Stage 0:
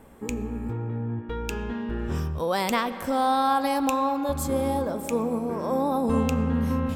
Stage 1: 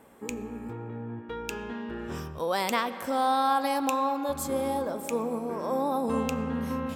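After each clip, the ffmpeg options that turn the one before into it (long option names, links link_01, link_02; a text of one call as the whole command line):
ffmpeg -i in.wav -af "highpass=frequency=290:poles=1,volume=-1.5dB" out.wav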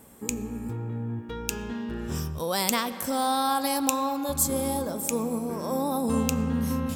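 ffmpeg -i in.wav -af "bass=frequency=250:gain=10,treble=frequency=4000:gain=14,volume=-1.5dB" out.wav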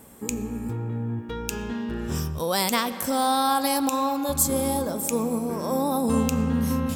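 ffmpeg -i in.wav -af "alimiter=level_in=9.5dB:limit=-1dB:release=50:level=0:latency=1,volume=-6.5dB" out.wav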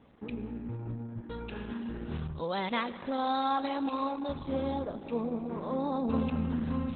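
ffmpeg -i in.wav -af "volume=-6.5dB" -ar 48000 -c:a libopus -b:a 8k out.opus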